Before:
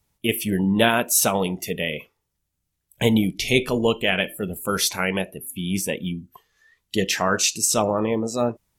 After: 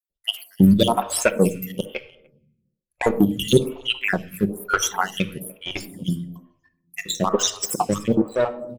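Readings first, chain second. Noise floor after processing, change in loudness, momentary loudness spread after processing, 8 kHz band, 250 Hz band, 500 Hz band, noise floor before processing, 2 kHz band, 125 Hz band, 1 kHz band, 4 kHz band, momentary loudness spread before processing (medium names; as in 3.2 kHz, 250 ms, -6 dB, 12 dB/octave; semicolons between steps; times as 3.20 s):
-81 dBFS, 0.0 dB, 13 LU, -4.0 dB, +2.5 dB, +0.5 dB, -78 dBFS, -2.5 dB, +2.5 dB, +1.0 dB, -0.5 dB, 10 LU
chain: random holes in the spectrogram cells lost 67%; in parallel at +2 dB: peak limiter -16 dBFS, peak gain reduction 8.5 dB; on the sum: reverb removal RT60 1.3 s; de-hum 86.99 Hz, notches 5; on a send: delay 296 ms -19.5 dB; on the sum: power-law waveshaper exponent 1.4; simulated room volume 2100 m³, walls furnished, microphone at 0.96 m; lamp-driven phase shifter 1.1 Hz; trim +7 dB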